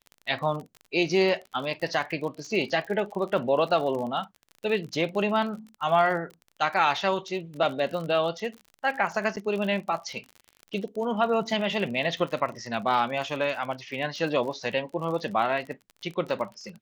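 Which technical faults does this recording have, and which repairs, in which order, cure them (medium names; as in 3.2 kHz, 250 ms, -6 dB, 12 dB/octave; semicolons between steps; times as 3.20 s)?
crackle 42 per s -34 dBFS
9.36–9.37 s: dropout 8.7 ms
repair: de-click; interpolate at 9.36 s, 8.7 ms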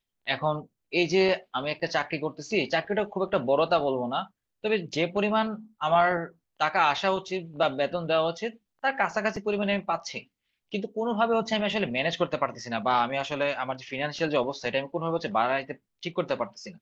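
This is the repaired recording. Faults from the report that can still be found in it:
nothing left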